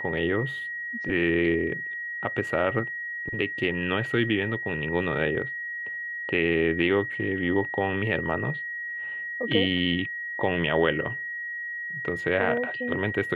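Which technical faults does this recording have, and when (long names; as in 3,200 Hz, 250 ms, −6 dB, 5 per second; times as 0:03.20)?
whistle 1,900 Hz −31 dBFS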